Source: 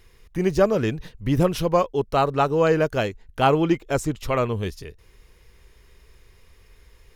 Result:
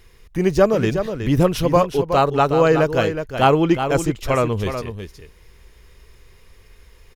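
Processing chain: echo 0.368 s -8.5 dB; gain +3.5 dB

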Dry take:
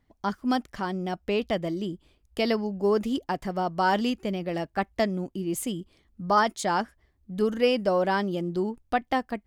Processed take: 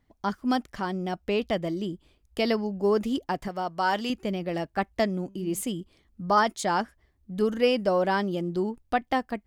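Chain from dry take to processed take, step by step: 3.48–4.1 low shelf 470 Hz -8 dB; 5.21–5.61 de-hum 195.5 Hz, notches 37

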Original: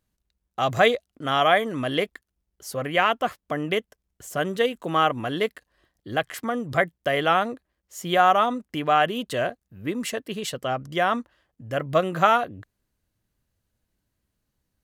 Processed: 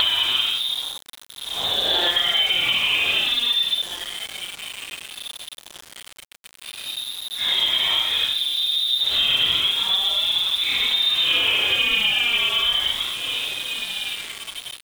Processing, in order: in parallel at -4 dB: fuzz box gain 33 dB, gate -35 dBFS; on the sum: inverted band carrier 3800 Hz; upward compressor, threshold -31 dBFS; dynamic EQ 2300 Hz, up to -3 dB, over -27 dBFS, Q 2.7; on a send: feedback echo 0.252 s, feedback 54%, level -20.5 dB; on the sum: Paulstretch 7.4×, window 0.05 s, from 10.7; compressor 4:1, threshold -24 dBFS, peak gain reduction 13 dB; sample gate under -33.5 dBFS; Doppler distortion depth 0.51 ms; gain +5 dB

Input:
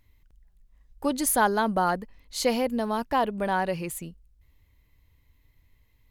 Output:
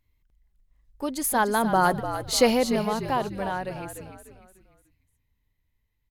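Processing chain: Doppler pass-by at 2.2, 7 m/s, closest 2.7 m; frequency-shifting echo 0.297 s, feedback 40%, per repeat -60 Hz, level -10 dB; gain +6.5 dB

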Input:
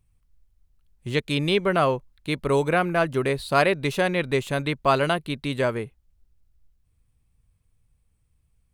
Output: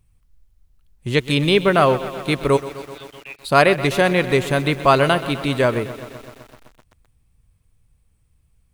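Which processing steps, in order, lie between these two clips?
2.56–3.44 band-pass 6000 Hz -> 2200 Hz, Q 17; lo-fi delay 0.127 s, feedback 80%, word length 7-bit, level -15 dB; gain +6 dB

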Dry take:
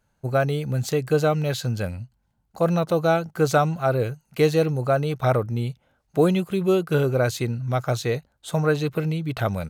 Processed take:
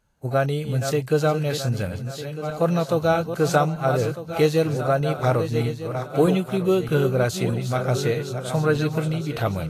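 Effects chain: regenerating reverse delay 0.626 s, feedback 55%, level -8 dB; Vorbis 32 kbps 44100 Hz

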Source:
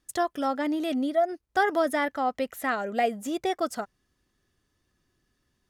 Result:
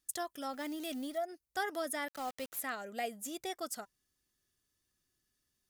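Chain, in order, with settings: 0.53–1.18 G.711 law mismatch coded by mu; pre-emphasis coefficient 0.8; notch 980 Hz, Q 27; 2.08–2.6 requantised 8-bit, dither none

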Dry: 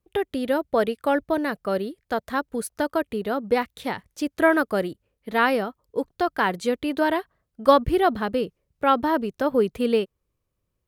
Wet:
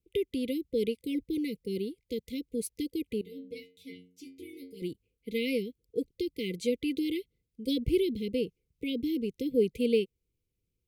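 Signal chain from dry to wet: 3.21–4.82 metallic resonator 89 Hz, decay 0.5 s, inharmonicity 0.002; brick-wall FIR band-stop 520–2000 Hz; gain -4.5 dB

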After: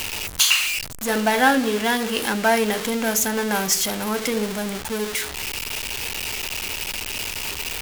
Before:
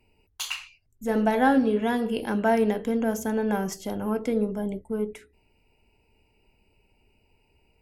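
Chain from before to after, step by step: zero-crossing step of -30 dBFS; tilt shelf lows -8 dB, about 1100 Hz; gain +5.5 dB

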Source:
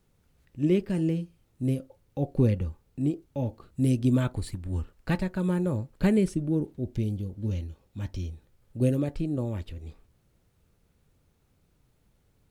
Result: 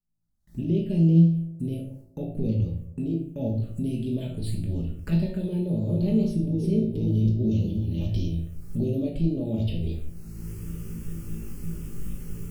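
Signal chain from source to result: 5.48–8 reverse delay 0.328 s, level -0.5 dB; recorder AGC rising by 25 dB/s; gate with hold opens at -41 dBFS; band shelf 1400 Hz -9 dB; notches 60/120 Hz; limiter -19 dBFS, peak gain reduction 10 dB; resonator 55 Hz, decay 0.5 s, harmonics all, mix 80%; envelope phaser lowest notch 460 Hz, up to 1700 Hz, full sweep at -30 dBFS; band-limited delay 79 ms, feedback 74%, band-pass 410 Hz, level -20.5 dB; reverb, pre-delay 5 ms, DRR 1 dB; gain +5.5 dB

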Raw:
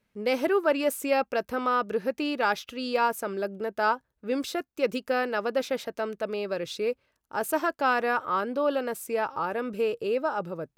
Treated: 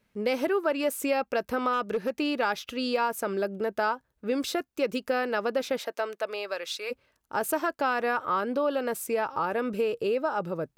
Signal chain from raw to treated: 5.78–6.9 HPF 400 Hz -> 1000 Hz 12 dB/oct; compressor 3:1, threshold -28 dBFS, peak gain reduction 7.5 dB; 1.73–2.14 hard clip -25.5 dBFS, distortion -30 dB; gain +3.5 dB

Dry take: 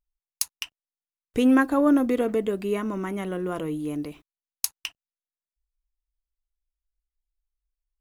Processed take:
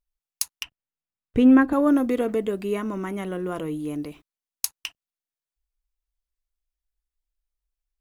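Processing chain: 0.63–1.73 tone controls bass +9 dB, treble -13 dB

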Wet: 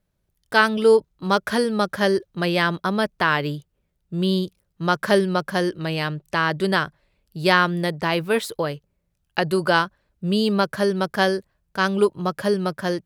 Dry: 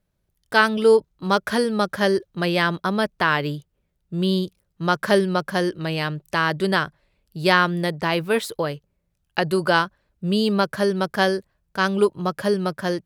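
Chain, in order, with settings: 6.14–6.55 high shelf 7900 Hz -6.5 dB

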